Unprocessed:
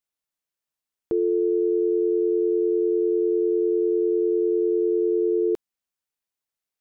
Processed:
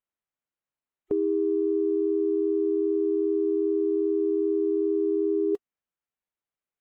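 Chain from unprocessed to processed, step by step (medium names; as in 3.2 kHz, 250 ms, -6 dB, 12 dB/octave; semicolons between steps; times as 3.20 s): local Wiener filter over 9 samples; formant-preserving pitch shift -1.5 st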